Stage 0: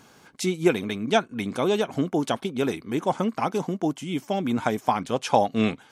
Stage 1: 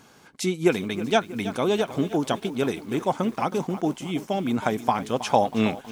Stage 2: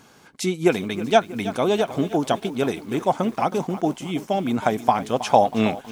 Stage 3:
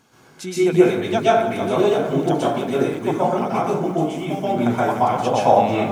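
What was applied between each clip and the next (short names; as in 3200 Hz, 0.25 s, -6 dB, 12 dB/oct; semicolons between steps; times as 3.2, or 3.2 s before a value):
lo-fi delay 0.32 s, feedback 55%, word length 7-bit, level -14 dB
dynamic EQ 690 Hz, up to +5 dB, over -37 dBFS, Q 2.9; gain +1.5 dB
plate-style reverb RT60 0.79 s, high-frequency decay 0.45×, pre-delay 0.11 s, DRR -8.5 dB; gain -7 dB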